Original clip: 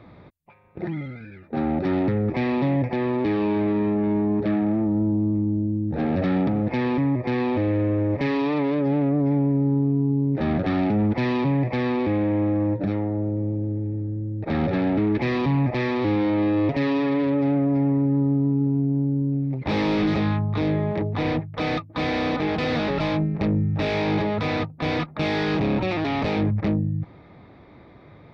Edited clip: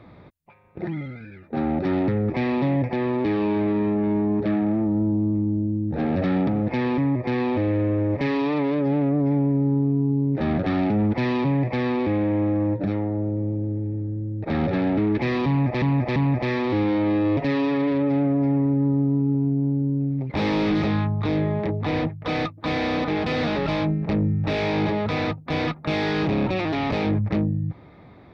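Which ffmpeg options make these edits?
-filter_complex "[0:a]asplit=3[s0][s1][s2];[s0]atrim=end=15.822[s3];[s1]atrim=start=15.478:end=15.822[s4];[s2]atrim=start=15.478[s5];[s3][s4]acrossfade=d=0.004:c1=hsin:c2=hsin[s6];[s6][s5]acrossfade=d=0.004:c1=hsin:c2=hsin"

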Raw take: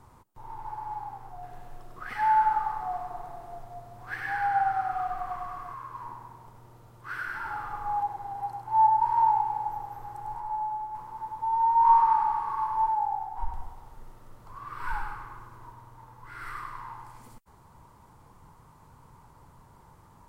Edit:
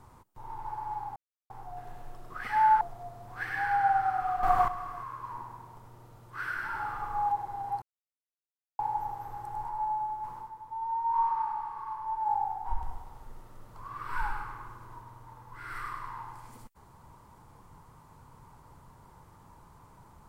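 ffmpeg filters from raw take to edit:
-filter_complex "[0:a]asplit=9[s0][s1][s2][s3][s4][s5][s6][s7][s8];[s0]atrim=end=1.16,asetpts=PTS-STARTPTS,afade=t=out:st=1.156:d=0.004:c=hsin,apad=pad_dur=0.34[s9];[s1]atrim=start=1.16:end=2.472,asetpts=PTS-STARTPTS,afade=t=in:d=0.004:c=hsin[s10];[s2]atrim=start=3.518:end=5.142[s11];[s3]atrim=start=5.138:end=5.392,asetpts=PTS-STARTPTS,volume=3.35[s12];[s4]atrim=start=5.388:end=8.53,asetpts=PTS-STARTPTS,afade=t=out:st=3.138:d=0.004:c=hsin[s13];[s5]atrim=start=8.53:end=9.5,asetpts=PTS-STARTPTS,volume=0[s14];[s6]atrim=start=9.5:end=11.22,asetpts=PTS-STARTPTS,afade=t=in:d=0.004:c=hsin,afade=t=out:st=1.59:d=0.13:silence=0.375837[s15];[s7]atrim=start=11.22:end=12.89,asetpts=PTS-STARTPTS,volume=0.376[s16];[s8]atrim=start=12.89,asetpts=PTS-STARTPTS,afade=t=in:d=0.13:silence=0.375837[s17];[s9][s10]concat=n=2:v=0:a=1[s18];[s18][s11]acrossfade=d=0.004:c1=hsin:c2=hsin[s19];[s19][s12]acrossfade=d=0.004:c1=hsin:c2=hsin[s20];[s13][s14][s15][s16][s17]concat=n=5:v=0:a=1[s21];[s20][s21]acrossfade=d=0.004:c1=hsin:c2=hsin"

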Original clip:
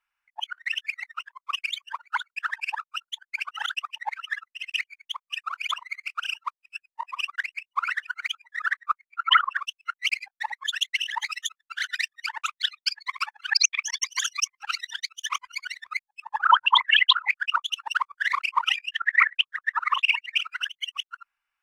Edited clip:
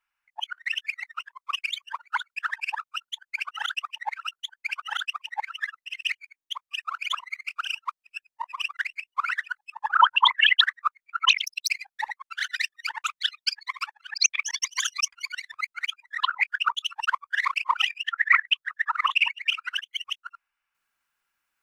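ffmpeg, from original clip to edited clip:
-filter_complex "[0:a]asplit=16[s0][s1][s2][s3][s4][s5][s6][s7][s8][s9][s10][s11][s12][s13][s14][s15];[s0]atrim=end=4.232[s16];[s1]atrim=start=2.918:end=5.072[s17];[s2]atrim=start=5.048:end=5.072[s18];[s3]atrim=start=5.048:end=5.072[s19];[s4]atrim=start=5.048:end=5.072[s20];[s5]atrim=start=5.048:end=5.072[s21];[s6]atrim=start=5.048:end=8.162[s22];[s7]atrim=start=16.068:end=17.112[s23];[s8]atrim=start=8.648:end=9.334[s24];[s9]atrim=start=9.33:end=10.1,asetpts=PTS-STARTPTS,asetrate=85995,aresample=44100[s25];[s10]atrim=start=10.096:end=10.642[s26];[s11]atrim=start=11.618:end=13.58,asetpts=PTS-STARTPTS,afade=t=out:st=1.412:d=0.55:silence=0.177828[s27];[s12]atrim=start=13.58:end=14.522,asetpts=PTS-STARTPTS,afade=t=in:d=0.004:c=hsin:silence=0.177828[s28];[s13]atrim=start=15.448:end=16.072[s29];[s14]atrim=start=8.158:end=8.652[s30];[s15]atrim=start=17.108[s31];[s16][s17]acrossfade=d=0.004:c1=hsin:c2=hsin[s32];[s32][s18]acrossfade=d=0.004:c1=hsin:c2=hsin[s33];[s33][s19]acrossfade=d=0.004:c1=hsin:c2=hsin[s34];[s34][s20]acrossfade=d=0.004:c1=hsin:c2=hsin[s35];[s35][s21]acrossfade=d=0.004:c1=hsin:c2=hsin[s36];[s36][s22]acrossfade=d=0.004:c1=hsin:c2=hsin[s37];[s37][s23]acrossfade=d=0.004:c1=hsin:c2=hsin[s38];[s38][s24]acrossfade=d=0.004:c1=hsin:c2=hsin[s39];[s39][s25]acrossfade=d=0.004:c1=hsin:c2=hsin[s40];[s40][s26]acrossfade=d=0.004:c1=hsin:c2=hsin[s41];[s27][s28]concat=n=2:v=0:a=1[s42];[s41][s42]acrossfade=d=0.004:c1=hsin:c2=hsin[s43];[s43][s29]acrossfade=d=0.004:c1=hsin:c2=hsin[s44];[s44][s30]acrossfade=d=0.004:c1=hsin:c2=hsin[s45];[s45][s31]acrossfade=d=0.004:c1=hsin:c2=hsin"

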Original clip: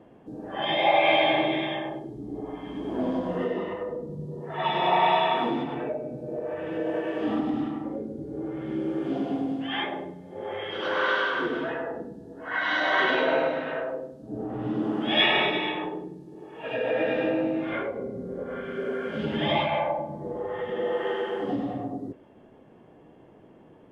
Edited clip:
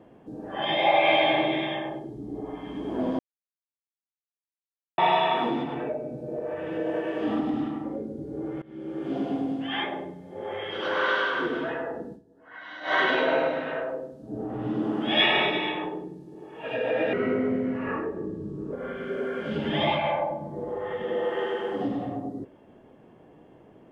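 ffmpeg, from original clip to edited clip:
-filter_complex "[0:a]asplit=8[s0][s1][s2][s3][s4][s5][s6][s7];[s0]atrim=end=3.19,asetpts=PTS-STARTPTS,afade=t=out:st=3.186:d=0.004:c=hsin[s8];[s1]atrim=start=3.19:end=4.98,asetpts=PTS-STARTPTS,volume=0[s9];[s2]atrim=start=4.98:end=8.62,asetpts=PTS-STARTPTS,afade=t=in:d=0.004:c=hsin,afade=t=out:st=3.636:d=0.004:c=hsin:silence=0.0794328[s10];[s3]atrim=start=8.62:end=12.25,asetpts=PTS-STARTPTS,afade=t=in:d=0.59:silence=0.0794328,afade=t=out:st=3.51:d=0.12:c=qua:silence=0.16788[s11];[s4]atrim=start=12.25:end=12.8,asetpts=PTS-STARTPTS,volume=0.168[s12];[s5]atrim=start=12.8:end=17.134,asetpts=PTS-STARTPTS,afade=t=in:d=0.12:c=qua:silence=0.16788[s13];[s6]atrim=start=17.13:end=18.41,asetpts=PTS-STARTPTS,asetrate=35280,aresample=44100[s14];[s7]atrim=start=18.406[s15];[s8][s9][s10][s11][s12][s13]concat=n=6:v=0:a=1[s16];[s16][s14]acrossfade=d=0.004:c1=hsin:c2=hsin[s17];[s17][s15]acrossfade=d=0.004:c1=hsin:c2=hsin"

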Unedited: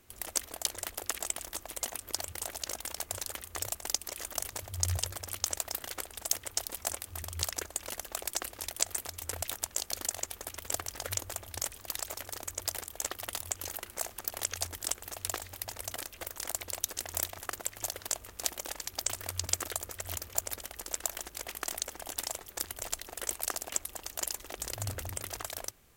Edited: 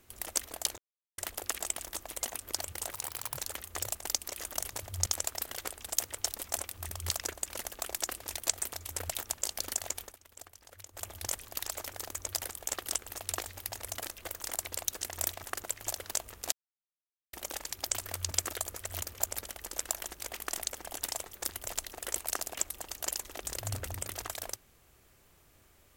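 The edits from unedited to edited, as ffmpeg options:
-filter_complex "[0:a]asplit=9[s0][s1][s2][s3][s4][s5][s6][s7][s8];[s0]atrim=end=0.78,asetpts=PTS-STARTPTS,afade=t=out:st=0.776:d=0.004:c=hsin,apad=pad_dur=0.4[s9];[s1]atrim=start=0.78:end=2.524,asetpts=PTS-STARTPTS,afade=t=in:d=0.004:c=hsin[s10];[s2]atrim=start=2.52:end=3.17,asetpts=PTS-STARTPTS,asetrate=63504,aresample=44100,atrim=end_sample=19906,asetpts=PTS-STARTPTS[s11];[s3]atrim=start=3.166:end=4.862[s12];[s4]atrim=start=5.388:end=10.48,asetpts=PTS-STARTPTS,afade=t=out:st=4.962:d=0.13:silence=0.158489[s13];[s5]atrim=start=10.48:end=11.25,asetpts=PTS-STARTPTS,volume=0.158[s14];[s6]atrim=start=11.25:end=13.202,asetpts=PTS-STARTPTS,afade=t=in:d=0.13:silence=0.158489[s15];[s7]atrim=start=14.828:end=18.48,asetpts=PTS-STARTPTS,afade=t=out:st=3.648:d=0.004:c=hsin,apad=pad_dur=0.81[s16];[s8]atrim=start=18.48,asetpts=PTS-STARTPTS,afade=t=in:d=0.004:c=hsin[s17];[s9][s10]concat=n=2:v=0:a=1[s18];[s18][s11]acrossfade=d=0.004:c1=hsin:c2=hsin[s19];[s19][s12]acrossfade=d=0.004:c1=hsin:c2=hsin[s20];[s13][s14][s15]concat=n=3:v=0:a=1[s21];[s20][s21]acrossfade=d=0.004:c1=hsin:c2=hsin[s22];[s16][s17]concat=n=2:v=0:a=1[s23];[s22][s23]acrossfade=d=0.004:c1=hsin:c2=hsin"

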